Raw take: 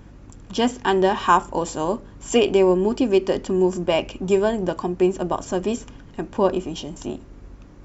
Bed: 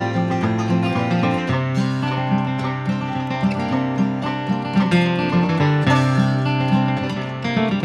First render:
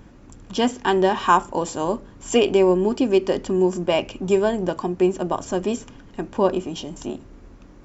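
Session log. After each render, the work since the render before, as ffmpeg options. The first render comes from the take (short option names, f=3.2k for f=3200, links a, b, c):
-af "bandreject=f=50:t=h:w=4,bandreject=f=100:t=h:w=4,bandreject=f=150:t=h:w=4"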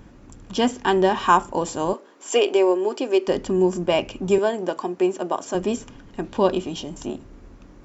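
-filter_complex "[0:a]asettb=1/sr,asplit=3[a][b][c];[a]atrim=end=1.934[d];[b]atrim=start=1.93:end=3.28,asetpts=PTS-STARTPTS,afade=t=in:d=0.004:c=qsin,afade=t=out:st=1.346:d=0.004:c=qsin,highpass=f=340:w=0.5412,highpass=f=340:w=1.3066[e];[c]atrim=start=3.276[f];[d][e]acrossfade=d=0.004:c1=hsin:c2=qsin[g];[g][f]acrossfade=d=0.004:c1=qsin:c2=hsin,asettb=1/sr,asplit=3[h][i][j];[h]atrim=end=4.384[k];[i]atrim=start=4.38:end=5.55,asetpts=PTS-STARTPTS,afade=t=in:d=0.004:c=qsin,afade=t=out:st=1.166:d=0.004:c=qsin,highpass=300[l];[j]atrim=start=5.546[m];[k][l]acrossfade=d=0.004:c1=hsin:c2=qsin[n];[n][m]acrossfade=d=0.004:c1=qsin:c2=hsin,asettb=1/sr,asplit=3[o][p][q];[o]atrim=end=6.244[r];[p]atrim=start=6.24:end=6.76,asetpts=PTS-STARTPTS,afade=t=in:d=0.004:c=qsin,afade=t=out:st=0.516:d=0.004:c=qsin,equalizer=f=3.7k:t=o:w=0.87:g=8[s];[q]atrim=start=6.756[t];[r][s]acrossfade=d=0.004:c1=hsin:c2=qsin[u];[u][t]acrossfade=d=0.004:c1=qsin:c2=hsin"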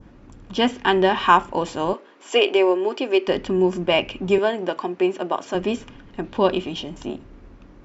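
-af "lowpass=4.5k,adynamicequalizer=threshold=0.0112:dfrequency=2500:dqfactor=0.93:tfrequency=2500:tqfactor=0.93:attack=5:release=100:ratio=0.375:range=3.5:mode=boostabove:tftype=bell"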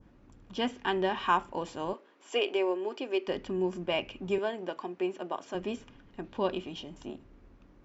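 -af "volume=-11.5dB"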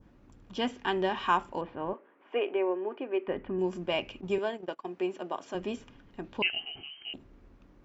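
-filter_complex "[0:a]asettb=1/sr,asplit=3[a][b][c];[a]atrim=end=1.614[d];[b]atrim=start=1.61:end=3.59,asetpts=PTS-STARTPTS,afade=t=in:d=0.004:c=qsin,afade=t=out:st=1.976:d=0.004:c=qsin,lowpass=f=2.3k:w=0.5412,lowpass=f=2.3k:w=1.3066[e];[c]atrim=start=3.586[f];[d][e]acrossfade=d=0.004:c1=hsin:c2=qsin[g];[g][f]acrossfade=d=0.004:c1=qsin:c2=hsin,asettb=1/sr,asplit=3[h][i][j];[h]atrim=end=4.214[k];[i]atrim=start=4.21:end=4.86,asetpts=PTS-STARTPTS,afade=t=in:d=0.004:c=qsin,afade=t=out:st=0.646:d=0.004:c=qsin,agate=range=-20dB:threshold=-40dB:ratio=16:release=100:detection=peak[l];[j]atrim=start=4.856[m];[k][l]acrossfade=d=0.004:c1=hsin:c2=qsin[n];[n][m]acrossfade=d=0.004:c1=qsin:c2=hsin,asettb=1/sr,asplit=3[o][p][q];[o]atrim=end=6.424[r];[p]atrim=start=6.42:end=7.14,asetpts=PTS-STARTPTS,afade=t=in:d=0.004:c=qsin,afade=t=out:st=0.716:d=0.004:c=qsin,lowpass=f=2.7k:t=q:w=0.5098,lowpass=f=2.7k:t=q:w=0.6013,lowpass=f=2.7k:t=q:w=0.9,lowpass=f=2.7k:t=q:w=2.563,afreqshift=-3200[s];[q]atrim=start=7.136[t];[r][s]acrossfade=d=0.004:c1=hsin:c2=qsin[u];[u][t]acrossfade=d=0.004:c1=qsin:c2=hsin"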